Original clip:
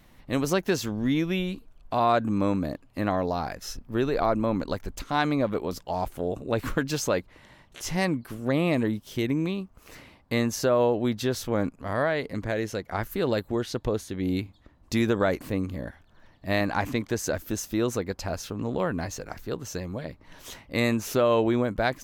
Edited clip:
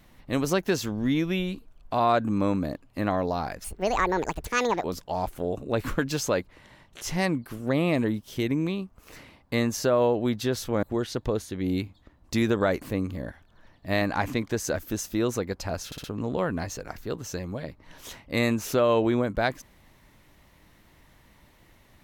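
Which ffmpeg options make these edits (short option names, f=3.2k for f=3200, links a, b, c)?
-filter_complex "[0:a]asplit=7[a][b][c][d][e][f][g];[a]atrim=end=3.644[h];[b]atrim=start=3.64:end=5.63,asetpts=PTS-STARTPTS,asetrate=73206,aresample=44100[i];[c]atrim=start=5.626:end=11.622[j];[d]atrim=start=13.418:end=18.512[k];[e]atrim=start=18.448:end=18.512[l];[f]atrim=start=18.448:end=18.512[m];[g]atrim=start=18.448[n];[h][i]acrossfade=d=0.004:c1=hsin:c2=hsin[o];[o][j]acrossfade=d=0.004:c1=hsin:c2=hsin[p];[p][k]acrossfade=d=0.004:c1=hsin:c2=hsin[q];[q][l]acrossfade=d=0.004:c1=hsin:c2=hsin[r];[r][m]acrossfade=d=0.004:c1=hsin:c2=hsin[s];[s][n]acrossfade=d=0.004:c1=hsin:c2=hsin"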